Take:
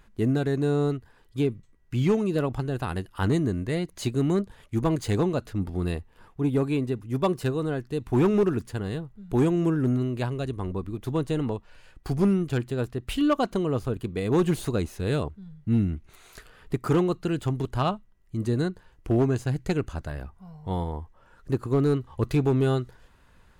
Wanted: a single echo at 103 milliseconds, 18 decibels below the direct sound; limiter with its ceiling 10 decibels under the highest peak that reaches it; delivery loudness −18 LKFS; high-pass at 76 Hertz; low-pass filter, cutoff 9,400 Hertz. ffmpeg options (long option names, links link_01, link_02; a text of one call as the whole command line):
ffmpeg -i in.wav -af "highpass=76,lowpass=9400,alimiter=limit=-21.5dB:level=0:latency=1,aecho=1:1:103:0.126,volume=13dB" out.wav